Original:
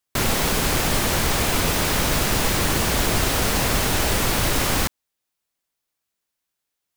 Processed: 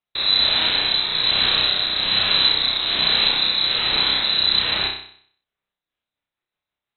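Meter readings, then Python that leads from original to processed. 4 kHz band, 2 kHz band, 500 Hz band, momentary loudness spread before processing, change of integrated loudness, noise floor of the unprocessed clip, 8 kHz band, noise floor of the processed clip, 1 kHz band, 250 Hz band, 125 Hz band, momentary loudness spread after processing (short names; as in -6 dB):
+11.0 dB, 0.0 dB, -8.5 dB, 1 LU, +4.0 dB, -81 dBFS, under -40 dB, under -85 dBFS, -4.5 dB, -11.0 dB, -14.5 dB, 3 LU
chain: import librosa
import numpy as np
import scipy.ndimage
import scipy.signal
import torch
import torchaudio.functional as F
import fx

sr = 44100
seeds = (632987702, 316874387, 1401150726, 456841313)

y = fx.rotary_switch(x, sr, hz=1.2, then_hz=6.0, switch_at_s=5.46)
y = fx.room_flutter(y, sr, wall_m=5.4, rt60_s=0.57)
y = fx.freq_invert(y, sr, carrier_hz=4000)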